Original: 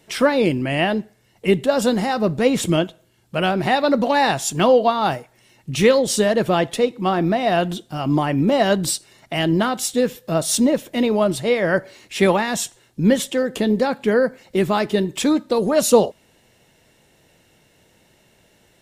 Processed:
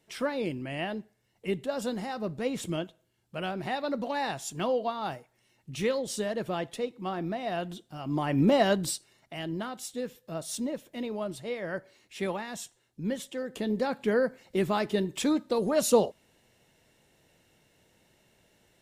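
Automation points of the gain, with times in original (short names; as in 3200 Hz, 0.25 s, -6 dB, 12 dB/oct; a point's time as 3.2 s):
8.05 s -14 dB
8.45 s -4 dB
9.35 s -16 dB
13.26 s -16 dB
13.95 s -8.5 dB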